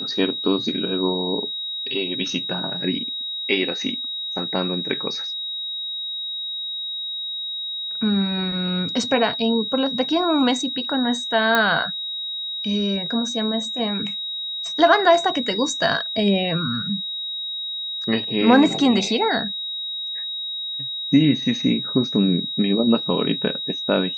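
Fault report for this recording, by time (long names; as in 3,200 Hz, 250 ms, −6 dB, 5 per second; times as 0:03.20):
whistle 3,800 Hz −26 dBFS
0:11.55: click −5 dBFS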